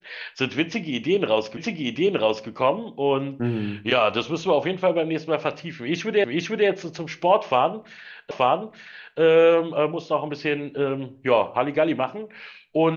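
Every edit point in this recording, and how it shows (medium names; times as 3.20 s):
1.57 s: repeat of the last 0.92 s
6.24 s: repeat of the last 0.45 s
8.31 s: repeat of the last 0.88 s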